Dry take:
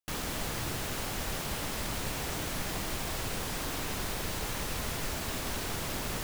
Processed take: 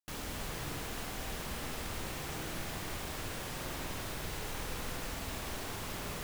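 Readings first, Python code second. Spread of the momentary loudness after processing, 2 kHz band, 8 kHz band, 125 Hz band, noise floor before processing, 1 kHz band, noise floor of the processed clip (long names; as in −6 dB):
0 LU, −4.5 dB, −6.5 dB, −4.5 dB, −36 dBFS, −4.5 dB, −41 dBFS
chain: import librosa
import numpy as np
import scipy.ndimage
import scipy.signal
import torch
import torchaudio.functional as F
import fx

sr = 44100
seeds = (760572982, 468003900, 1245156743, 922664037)

y = fx.rev_spring(x, sr, rt60_s=2.9, pass_ms=(49,), chirp_ms=70, drr_db=2.5)
y = y * librosa.db_to_amplitude(-6.5)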